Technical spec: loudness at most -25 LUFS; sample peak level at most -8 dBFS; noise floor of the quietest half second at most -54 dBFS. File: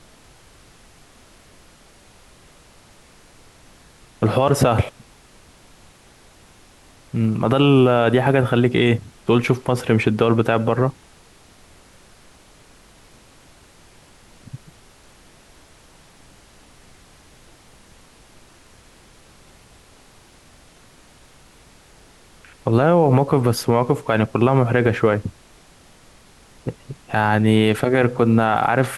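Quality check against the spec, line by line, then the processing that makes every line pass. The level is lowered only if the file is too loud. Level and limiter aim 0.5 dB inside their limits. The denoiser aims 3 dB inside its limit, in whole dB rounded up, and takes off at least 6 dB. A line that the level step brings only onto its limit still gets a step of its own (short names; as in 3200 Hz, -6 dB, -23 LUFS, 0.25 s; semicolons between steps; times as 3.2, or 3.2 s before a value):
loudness -18.0 LUFS: fail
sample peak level -4.5 dBFS: fail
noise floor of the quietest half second -50 dBFS: fail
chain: gain -7.5 dB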